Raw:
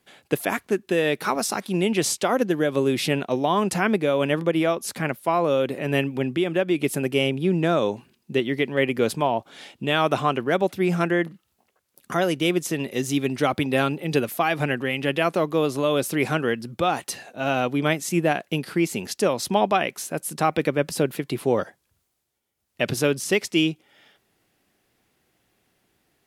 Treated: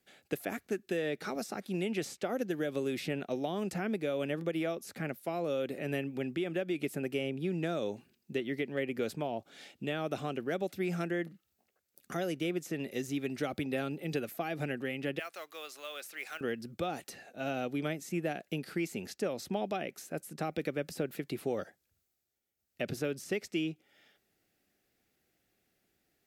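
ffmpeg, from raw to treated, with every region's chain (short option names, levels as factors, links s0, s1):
-filter_complex "[0:a]asettb=1/sr,asplit=3[s0][s1][s2];[s0]atrim=end=0.974[s3];[s1]atrim=start=0.97:end=1.38,asetpts=PTS-STARTPTS,afade=t=in:d=0.004:c=qsin,afade=t=out:st=0.406:d=0.004:c=qsin,bandreject=f=2600:w=23,acrossover=split=9400[s4][s5];[s5]acompressor=threshold=0.00112:ratio=4:attack=1:release=60[s6];[s4][s6]amix=inputs=2:normalize=0[s7];[s2]atrim=start=1.376[s8];[s3][s7]acrossfade=d=0.004:c1=hsin:c2=qsin[s9];[s9][s8]acrossfade=d=0.004:c1=qsin:c2=hsin,asettb=1/sr,asplit=3[s10][s11][s12];[s10]atrim=end=15.194[s13];[s11]atrim=start=15.19:end=16.41,asetpts=PTS-STARTPTS,afade=t=in:d=0.004:c=qsin,afade=t=out:st=1.216:d=0.004:c=qsin,highpass=1300,acrusher=bits=5:mode=log:mix=0:aa=0.000001[s14];[s12]atrim=start=16.406[s15];[s13][s14]acrossfade=d=0.004:c1=hsin:c2=qsin[s16];[s16][s15]acrossfade=d=0.004:c1=qsin:c2=hsin,highshelf=f=7900:g=5,acrossover=split=680|2600[s17][s18][s19];[s17]acompressor=threshold=0.0794:ratio=4[s20];[s18]acompressor=threshold=0.0282:ratio=4[s21];[s19]acompressor=threshold=0.0141:ratio=4[s22];[s20][s21][s22]amix=inputs=3:normalize=0,equalizer=f=125:t=o:w=0.33:g=-4,equalizer=f=1000:t=o:w=0.33:g=-11,equalizer=f=3150:t=o:w=0.33:g=-3,equalizer=f=10000:t=o:w=0.33:g=-6,volume=0.376"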